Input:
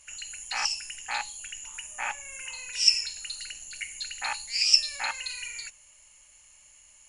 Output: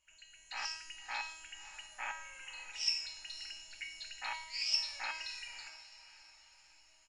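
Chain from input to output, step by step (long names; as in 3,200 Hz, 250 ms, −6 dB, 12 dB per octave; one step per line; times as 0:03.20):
low-pass filter 4,800 Hz 12 dB per octave
tuned comb filter 320 Hz, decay 0.8 s, mix 90%
on a send: feedback delay with all-pass diffusion 569 ms, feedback 46%, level −15 dB
on the sum: automatic gain control gain up to 8.5 dB
single-tap delay 112 ms −21.5 dB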